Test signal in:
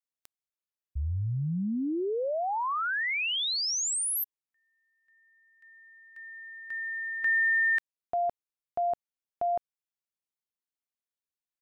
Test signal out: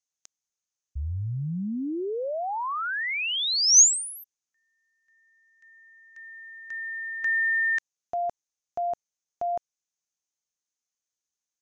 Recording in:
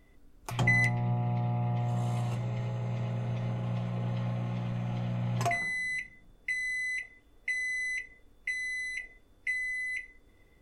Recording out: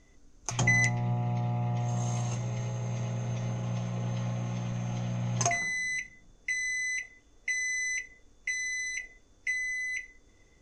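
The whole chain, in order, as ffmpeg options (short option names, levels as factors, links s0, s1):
-af "lowpass=f=6400:t=q:w=7.8"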